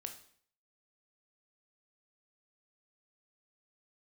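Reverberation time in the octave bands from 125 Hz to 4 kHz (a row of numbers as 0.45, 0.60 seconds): 0.60, 0.60, 0.55, 0.55, 0.55, 0.50 seconds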